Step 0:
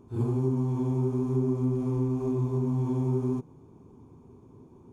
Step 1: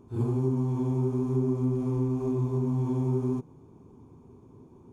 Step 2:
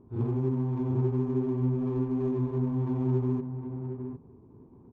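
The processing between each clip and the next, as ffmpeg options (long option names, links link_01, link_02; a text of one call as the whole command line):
ffmpeg -i in.wav -af anull out.wav
ffmpeg -i in.wav -filter_complex "[0:a]asplit=2[link_01][link_02];[link_02]adelay=758,volume=-7dB,highshelf=frequency=4000:gain=-17.1[link_03];[link_01][link_03]amix=inputs=2:normalize=0,adynamicsmooth=sensitivity=7.5:basefreq=1100,volume=-1.5dB" out.wav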